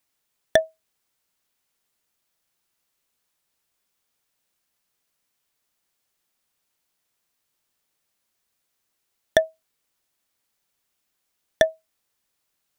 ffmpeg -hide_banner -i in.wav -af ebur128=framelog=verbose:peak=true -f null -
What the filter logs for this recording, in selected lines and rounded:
Integrated loudness:
  I:         -24.5 LUFS
  Threshold: -35.7 LUFS
Loudness range:
  LRA:         3.0 LU
  Threshold: -52.3 LUFS
  LRA low:   -32.9 LUFS
  LRA high:  -29.9 LUFS
True peak:
  Peak:       -2.7 dBFS